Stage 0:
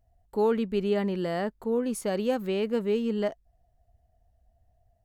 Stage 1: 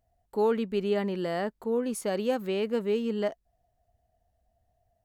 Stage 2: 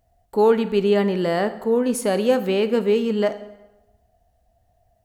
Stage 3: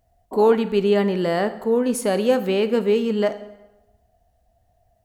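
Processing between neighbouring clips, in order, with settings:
low shelf 110 Hz -11 dB
plate-style reverb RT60 1 s, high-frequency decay 0.8×, DRR 10.5 dB; gain +8.5 dB
painted sound noise, 0.31–0.56, 210–1100 Hz -32 dBFS

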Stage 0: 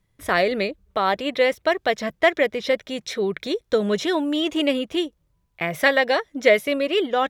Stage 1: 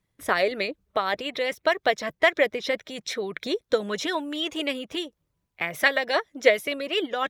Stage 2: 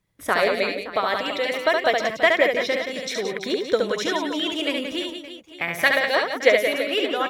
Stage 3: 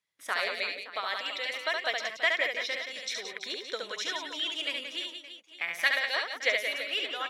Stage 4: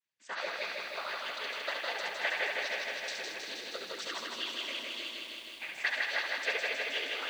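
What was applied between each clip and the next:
harmonic-percussive split harmonic -9 dB; low shelf 67 Hz -10 dB
reverse bouncing-ball echo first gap 70 ms, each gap 1.5×, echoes 5; gain +1.5 dB
band-pass 4000 Hz, Q 0.53; gain -4 dB
noise vocoder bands 16; diffused feedback echo 0.459 s, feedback 45%, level -15 dB; lo-fi delay 0.158 s, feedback 80%, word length 9-bit, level -3.5 dB; gain -6.5 dB

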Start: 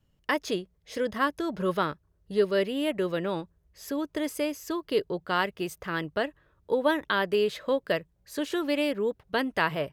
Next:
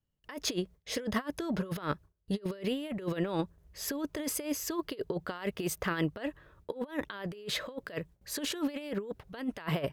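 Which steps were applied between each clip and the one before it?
gate with hold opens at -57 dBFS; negative-ratio compressor -33 dBFS, ratio -0.5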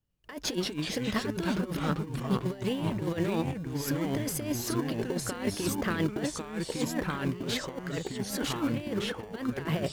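echoes that change speed 96 ms, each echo -3 st, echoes 3; in parallel at -11.5 dB: sample-and-hold 34×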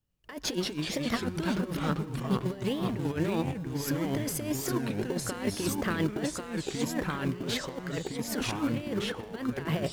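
on a send at -20.5 dB: reverb RT60 1.9 s, pre-delay 83 ms; on the sum: record warp 33 1/3 rpm, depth 250 cents

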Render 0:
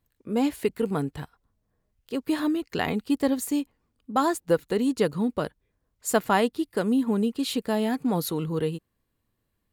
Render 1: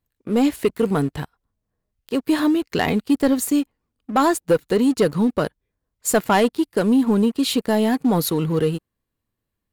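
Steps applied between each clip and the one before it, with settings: sample leveller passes 2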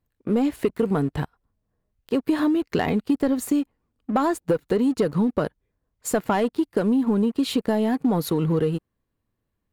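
compressor, threshold -21 dBFS, peak gain reduction 9 dB; high shelf 2600 Hz -9 dB; gain +3 dB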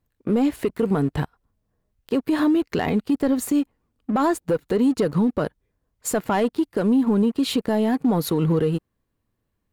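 limiter -15.5 dBFS, peak gain reduction 6 dB; gain +2.5 dB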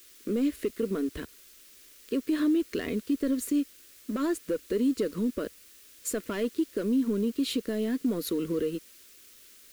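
requantised 8-bit, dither triangular; fixed phaser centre 340 Hz, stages 4; gain -5.5 dB

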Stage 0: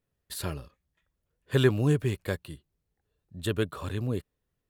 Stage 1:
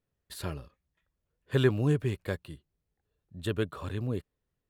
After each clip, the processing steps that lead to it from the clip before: high shelf 5200 Hz -6.5 dB; gain -2 dB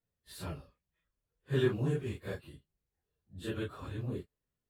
phase scrambler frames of 0.1 s; gain -5.5 dB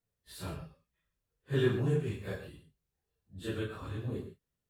non-linear reverb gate 0.15 s flat, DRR 5.5 dB

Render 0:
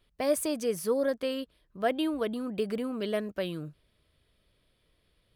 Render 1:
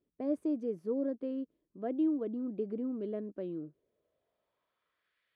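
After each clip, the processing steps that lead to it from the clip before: band-pass sweep 300 Hz -> 1800 Hz, 3.51–5.2; gain +1 dB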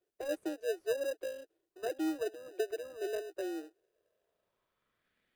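steep high-pass 330 Hz 96 dB/oct; in parallel at -4.5 dB: sample-and-hold 40×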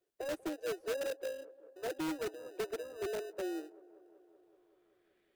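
in parallel at -4.5 dB: wrapped overs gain 30 dB; on the sum: band-limited delay 0.19 s, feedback 75%, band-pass 550 Hz, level -20 dB; gain -4 dB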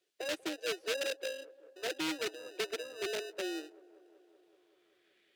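weighting filter D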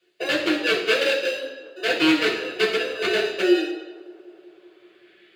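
reverb RT60 0.85 s, pre-delay 3 ms, DRR -6.5 dB

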